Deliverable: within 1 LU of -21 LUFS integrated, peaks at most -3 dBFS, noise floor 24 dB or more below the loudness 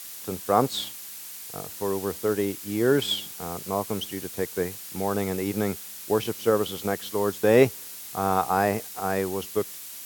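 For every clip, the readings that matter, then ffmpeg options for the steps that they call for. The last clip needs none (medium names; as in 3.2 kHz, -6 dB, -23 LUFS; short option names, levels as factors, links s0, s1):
noise floor -40 dBFS; noise floor target -51 dBFS; loudness -26.5 LUFS; peak level -4.5 dBFS; loudness target -21.0 LUFS
-> -af "afftdn=nr=11:nf=-40"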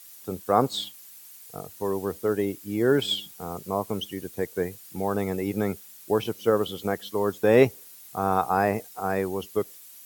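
noise floor -48 dBFS; noise floor target -51 dBFS
-> -af "afftdn=nr=6:nf=-48"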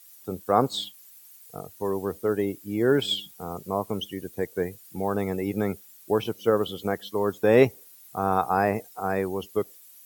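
noise floor -51 dBFS; loudness -26.5 LUFS; peak level -5.0 dBFS; loudness target -21.0 LUFS
-> -af "volume=1.88,alimiter=limit=0.708:level=0:latency=1"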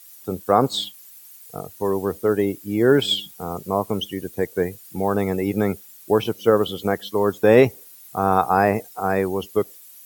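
loudness -21.5 LUFS; peak level -3.0 dBFS; noise floor -46 dBFS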